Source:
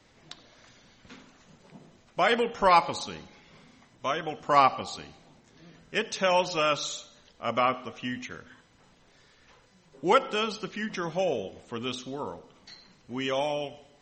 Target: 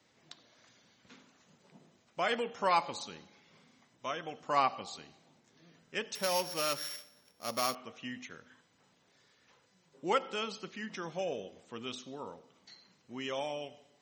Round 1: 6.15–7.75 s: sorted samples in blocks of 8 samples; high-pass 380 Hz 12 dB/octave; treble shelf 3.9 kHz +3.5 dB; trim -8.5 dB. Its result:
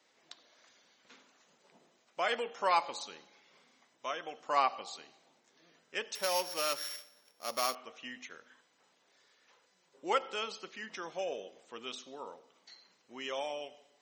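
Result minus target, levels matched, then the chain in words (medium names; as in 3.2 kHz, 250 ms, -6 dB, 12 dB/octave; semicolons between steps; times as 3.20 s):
125 Hz band -13.0 dB
6.15–7.75 s: sorted samples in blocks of 8 samples; high-pass 120 Hz 12 dB/octave; treble shelf 3.9 kHz +3.5 dB; trim -8.5 dB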